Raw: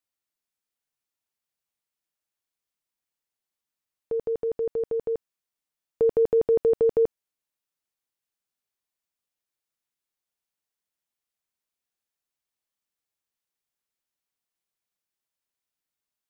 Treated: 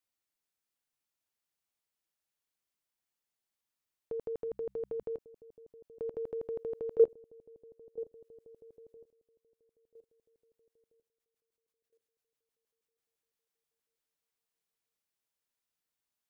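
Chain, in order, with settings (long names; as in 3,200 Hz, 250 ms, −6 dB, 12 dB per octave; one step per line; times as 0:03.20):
delay with a low-pass on its return 986 ms, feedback 35%, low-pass 550 Hz, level −16.5 dB
output level in coarse steps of 18 dB
0:04.41–0:05.03: hum removal 65.27 Hz, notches 3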